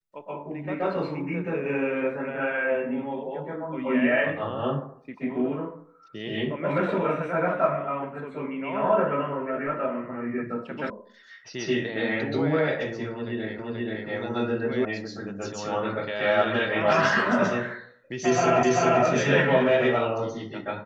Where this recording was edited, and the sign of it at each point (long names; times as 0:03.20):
0:10.90: cut off before it has died away
0:13.59: the same again, the last 0.48 s
0:14.85: cut off before it has died away
0:18.63: the same again, the last 0.39 s